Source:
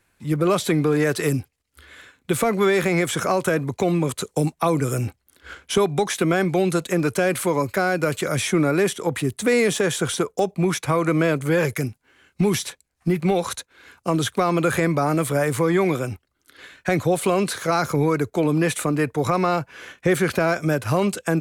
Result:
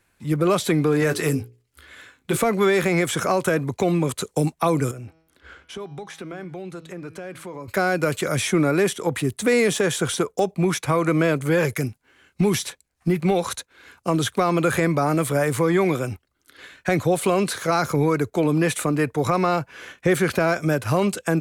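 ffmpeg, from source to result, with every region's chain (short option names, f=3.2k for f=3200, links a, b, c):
-filter_complex "[0:a]asettb=1/sr,asplit=3[a][b][c];[a]atrim=end=1.004[d];[b]atrim=start=1:end=2.37,asetpts=PTS-STARTPTS,afade=t=in:d=0.004:c=qsin,afade=t=out:st=1.366:d=0.004:c=qsin,bandreject=f=60:t=h:w=6,bandreject=f=120:t=h:w=6,bandreject=f=180:t=h:w=6,bandreject=f=240:t=h:w=6,bandreject=f=300:t=h:w=6,bandreject=f=360:t=h:w=6,bandreject=f=420:t=h:w=6,bandreject=f=480:t=h:w=6,bandreject=f=540:t=h:w=6,asplit=2[e][f];[f]adelay=19,volume=-10dB[g];[e][g]amix=inputs=2:normalize=0,atrim=end_sample=60417,volume=13dB,asoftclip=hard,volume=-13dB[h];[c]atrim=start=2.366[i];[d][h]acrossfade=d=0.004:c1=hsin:c2=qsin[j];[j][i]acrossfade=d=0.004:c1=qsin:c2=hsin,asettb=1/sr,asplit=3[k][l][m];[k]atrim=end=4.914[n];[l]atrim=start=4.91:end=7.68,asetpts=PTS-STARTPTS,afade=t=in:d=0.004:c=qsin,afade=t=out:st=2.766:d=0.004:c=qsin,lowpass=f=3.2k:p=1,bandreject=f=161.5:t=h:w=4,bandreject=f=323:t=h:w=4,bandreject=f=484.5:t=h:w=4,bandreject=f=646:t=h:w=4,bandreject=f=807.5:t=h:w=4,bandreject=f=969:t=h:w=4,bandreject=f=1.1305k:t=h:w=4,bandreject=f=1.292k:t=h:w=4,bandreject=f=1.4535k:t=h:w=4,bandreject=f=1.615k:t=h:w=4,bandreject=f=1.7765k:t=h:w=4,bandreject=f=1.938k:t=h:w=4,bandreject=f=2.0995k:t=h:w=4,bandreject=f=2.261k:t=h:w=4,bandreject=f=2.4225k:t=h:w=4,bandreject=f=2.584k:t=h:w=4,bandreject=f=2.7455k:t=h:w=4,bandreject=f=2.907k:t=h:w=4,bandreject=f=3.0685k:t=h:w=4,bandreject=f=3.23k:t=h:w=4,bandreject=f=3.3915k:t=h:w=4,bandreject=f=3.553k:t=h:w=4,bandreject=f=3.7145k:t=h:w=4,bandreject=f=3.876k:t=h:w=4,bandreject=f=4.0375k:t=h:w=4,bandreject=f=4.199k:t=h:w=4,bandreject=f=4.3605k:t=h:w=4,bandreject=f=4.522k:t=h:w=4,bandreject=f=4.6835k:t=h:w=4,bandreject=f=4.845k:t=h:w=4,bandreject=f=5.0065k:t=h:w=4,bandreject=f=5.168k:t=h:w=4,bandreject=f=5.3295k:t=h:w=4,bandreject=f=5.491k:t=h:w=4,bandreject=f=5.6525k:t=h:w=4,bandreject=f=5.814k:t=h:w=4,bandreject=f=5.9755k:t=h:w=4,bandreject=f=6.137k:t=h:w=4,acompressor=threshold=-43dB:ratio=2:attack=3.2:release=140:knee=1:detection=peak[o];[m]atrim=start=7.676[p];[n][o]acrossfade=d=0.004:c1=hsin:c2=qsin[q];[q][p]acrossfade=d=0.004:c1=qsin:c2=hsin"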